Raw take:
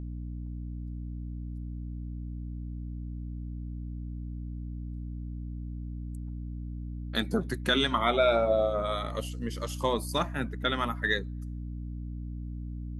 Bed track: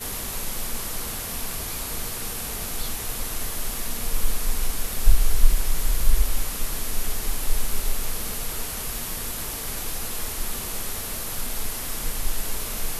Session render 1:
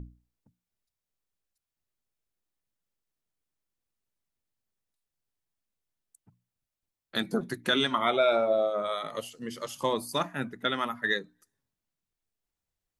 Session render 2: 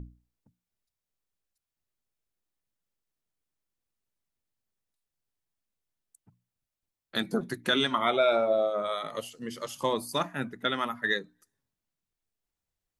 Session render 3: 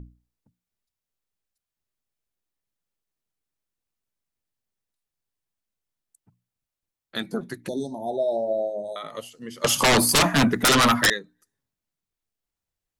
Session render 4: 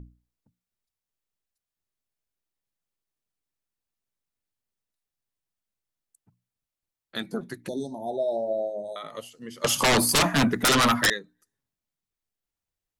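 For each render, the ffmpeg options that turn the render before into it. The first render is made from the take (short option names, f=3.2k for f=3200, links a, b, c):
-af "bandreject=f=60:t=h:w=6,bandreject=f=120:t=h:w=6,bandreject=f=180:t=h:w=6,bandreject=f=240:t=h:w=6,bandreject=f=300:t=h:w=6"
-af anull
-filter_complex "[0:a]asettb=1/sr,asplit=3[a][b][c];[a]atrim=end=7.684[d];[b]atrim=start=7.68:end=8.96,asetpts=PTS-STARTPTS,afade=t=in:d=0.004:c=qsin,afade=t=out:st=1.276:d=0.004:c=qsin,asuperstop=centerf=1900:order=20:qfactor=0.59[e];[c]atrim=start=8.956[f];[d][e]acrossfade=d=0.004:c1=hsin:c2=qsin[g];[g][f]acrossfade=d=0.004:c1=qsin:c2=hsin,asettb=1/sr,asplit=3[h][i][j];[h]atrim=end=9.644[k];[i]atrim=start=9.64:end=11.1,asetpts=PTS-STARTPTS,afade=t=in:d=0.004:c=qsin,afade=t=out:st=1.456:d=0.004:c=qsin,aeval=exprs='0.211*sin(PI/2*7.08*val(0)/0.211)':c=same[l];[j]atrim=start=11.096[m];[k][l]acrossfade=d=0.004:c1=hsin:c2=qsin[n];[n][m]acrossfade=d=0.004:c1=qsin:c2=hsin"
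-af "volume=-2.5dB"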